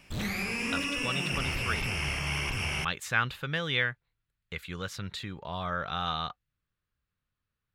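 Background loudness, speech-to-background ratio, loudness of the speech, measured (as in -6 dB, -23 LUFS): -31.0 LUFS, -2.5 dB, -33.5 LUFS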